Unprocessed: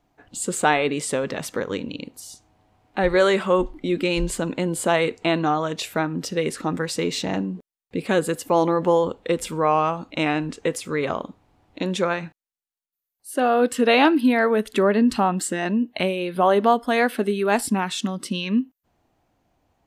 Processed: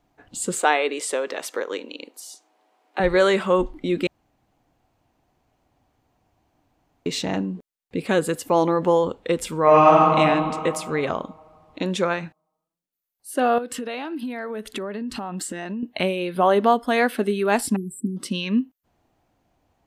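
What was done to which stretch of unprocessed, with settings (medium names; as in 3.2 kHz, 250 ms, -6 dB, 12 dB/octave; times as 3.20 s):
0.59–3.00 s: high-pass 340 Hz 24 dB/octave
4.07–7.06 s: room tone
9.62–10.17 s: reverb throw, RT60 2.4 s, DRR -7 dB
13.58–15.83 s: compression 16:1, threshold -26 dBFS
17.76–18.17 s: brick-wall FIR band-stop 460–7600 Hz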